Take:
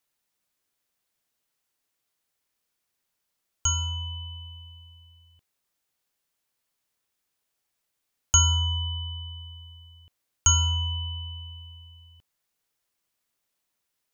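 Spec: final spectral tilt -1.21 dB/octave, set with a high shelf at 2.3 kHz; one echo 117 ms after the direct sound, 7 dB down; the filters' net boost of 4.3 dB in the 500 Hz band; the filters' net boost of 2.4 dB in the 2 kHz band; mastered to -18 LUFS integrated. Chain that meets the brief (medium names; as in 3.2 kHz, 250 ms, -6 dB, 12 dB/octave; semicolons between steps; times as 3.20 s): peaking EQ 500 Hz +5.5 dB; peaking EQ 2 kHz +8 dB; treble shelf 2.3 kHz -7 dB; delay 117 ms -7 dB; trim +7.5 dB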